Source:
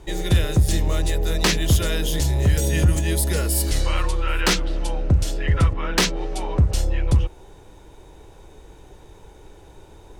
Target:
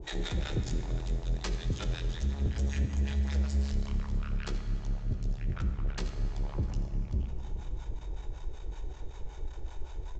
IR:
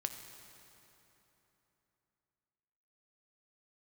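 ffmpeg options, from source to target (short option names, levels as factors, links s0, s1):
-filter_complex "[0:a]asubboost=boost=5.5:cutoff=63,alimiter=limit=0.126:level=0:latency=1:release=29,aresample=16000,asoftclip=type=tanh:threshold=0.0355,aresample=44100,acrossover=split=610[s0][s1];[s0]aeval=exprs='val(0)*(1-1/2+1/2*cos(2*PI*5.3*n/s))':c=same[s2];[s1]aeval=exprs='val(0)*(1-1/2-1/2*cos(2*PI*5.3*n/s))':c=same[s3];[s2][s3]amix=inputs=2:normalize=0,aecho=1:1:649:0.0668[s4];[1:a]atrim=start_sample=2205[s5];[s4][s5]afir=irnorm=-1:irlink=0,volume=1.58"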